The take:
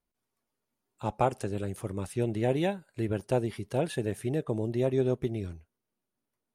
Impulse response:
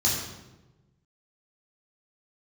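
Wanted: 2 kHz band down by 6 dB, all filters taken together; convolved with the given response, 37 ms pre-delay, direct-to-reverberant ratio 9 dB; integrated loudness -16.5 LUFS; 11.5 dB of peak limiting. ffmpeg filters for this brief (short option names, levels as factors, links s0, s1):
-filter_complex "[0:a]equalizer=f=2000:t=o:g=-8,alimiter=limit=0.0631:level=0:latency=1,asplit=2[s0][s1];[1:a]atrim=start_sample=2205,adelay=37[s2];[s1][s2]afir=irnorm=-1:irlink=0,volume=0.1[s3];[s0][s3]amix=inputs=2:normalize=0,volume=7.5"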